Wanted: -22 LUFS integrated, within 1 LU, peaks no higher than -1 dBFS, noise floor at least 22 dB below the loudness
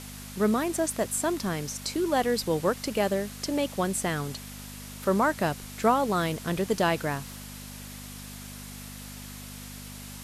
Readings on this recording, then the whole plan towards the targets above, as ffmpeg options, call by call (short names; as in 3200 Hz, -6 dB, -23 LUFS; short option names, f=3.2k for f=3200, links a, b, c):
hum 50 Hz; harmonics up to 250 Hz; hum level -41 dBFS; noise floor -42 dBFS; noise floor target -50 dBFS; loudness -27.5 LUFS; peak -10.5 dBFS; loudness target -22.0 LUFS
-> -af "bandreject=f=50:t=h:w=4,bandreject=f=100:t=h:w=4,bandreject=f=150:t=h:w=4,bandreject=f=200:t=h:w=4,bandreject=f=250:t=h:w=4"
-af "afftdn=nr=8:nf=-42"
-af "volume=5.5dB"